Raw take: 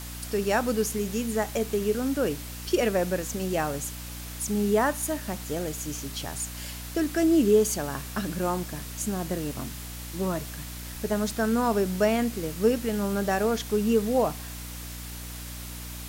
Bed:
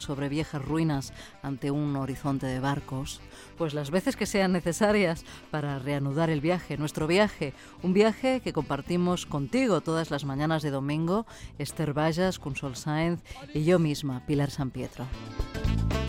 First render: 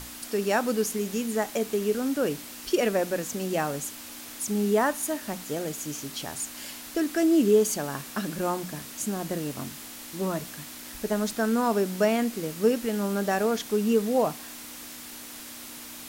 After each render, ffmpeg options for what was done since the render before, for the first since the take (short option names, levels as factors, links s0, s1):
-af "bandreject=f=60:t=h:w=6,bandreject=f=120:t=h:w=6,bandreject=f=180:t=h:w=6"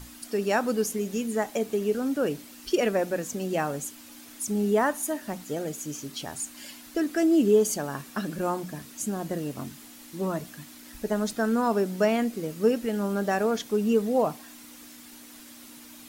-af "afftdn=nr=8:nf=-42"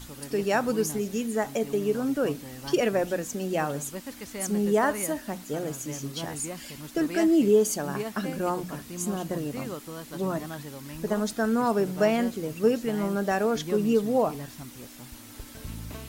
-filter_complex "[1:a]volume=0.251[s0];[0:a][s0]amix=inputs=2:normalize=0"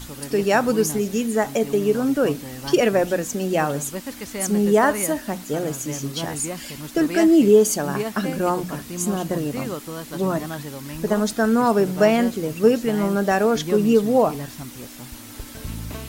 -af "volume=2.11"